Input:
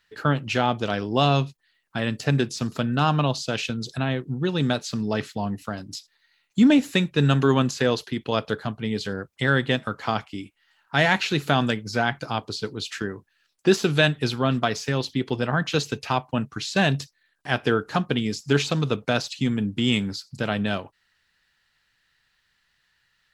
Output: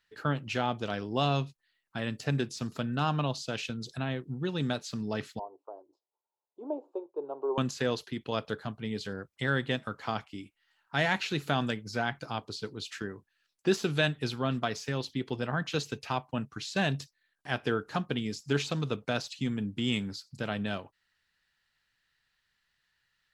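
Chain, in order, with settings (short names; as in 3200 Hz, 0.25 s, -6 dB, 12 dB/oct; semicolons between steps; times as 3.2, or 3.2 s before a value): 5.39–7.58 elliptic band-pass 360–980 Hz, stop band 40 dB; gain -8 dB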